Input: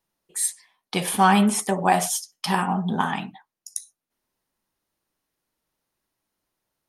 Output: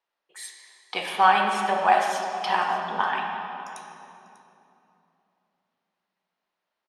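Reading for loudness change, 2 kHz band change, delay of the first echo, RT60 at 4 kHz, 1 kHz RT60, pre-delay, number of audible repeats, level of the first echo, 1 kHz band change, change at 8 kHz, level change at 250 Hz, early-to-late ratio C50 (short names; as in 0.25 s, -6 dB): -1.0 dB, +2.0 dB, 0.594 s, 2.1 s, 2.7 s, 16 ms, 1, -18.0 dB, +1.5 dB, -15.0 dB, -15.5 dB, 3.0 dB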